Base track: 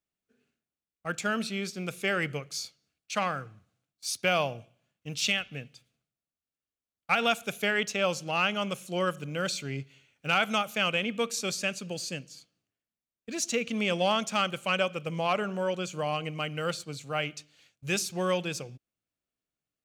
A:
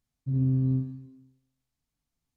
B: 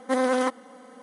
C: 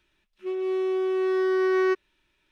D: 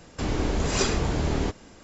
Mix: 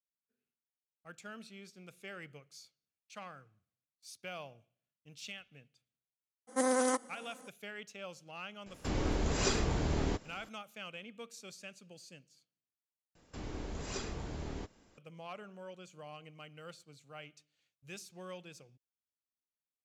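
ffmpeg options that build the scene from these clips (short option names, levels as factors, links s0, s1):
-filter_complex "[4:a]asplit=2[s0][s1];[0:a]volume=0.119[s2];[2:a]highshelf=f=5000:t=q:w=1.5:g=10[s3];[s2]asplit=2[s4][s5];[s4]atrim=end=13.154[s6];[s1]atrim=end=1.83,asetpts=PTS-STARTPTS,volume=0.158[s7];[s5]atrim=start=14.976[s8];[s3]atrim=end=1.02,asetpts=PTS-STARTPTS,volume=0.447,afade=t=in:d=0.02,afade=t=out:st=1:d=0.02,adelay=6470[s9];[s0]atrim=end=1.83,asetpts=PTS-STARTPTS,volume=0.447,afade=t=in:d=0.004:c=hsin,afade=t=out:st=1.826:d=0.004:c=hsin,adelay=381906S[s10];[s6][s7]acrossfade=d=0.004:c1=hsin:c2=hsin[s11];[s11][s8]acrossfade=d=0.004:c1=hsin:c2=hsin[s12];[s12][s9][s10]amix=inputs=3:normalize=0"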